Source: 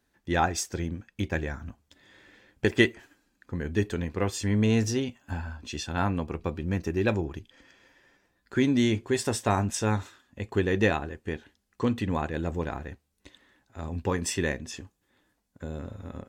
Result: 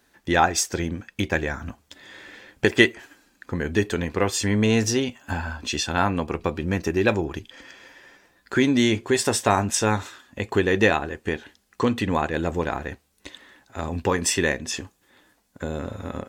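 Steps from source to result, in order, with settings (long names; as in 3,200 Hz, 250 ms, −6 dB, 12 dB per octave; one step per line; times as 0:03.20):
low-shelf EQ 250 Hz −8.5 dB
in parallel at +2 dB: downward compressor, threshold −38 dBFS, peak gain reduction 19.5 dB
on the sum: level +5.5 dB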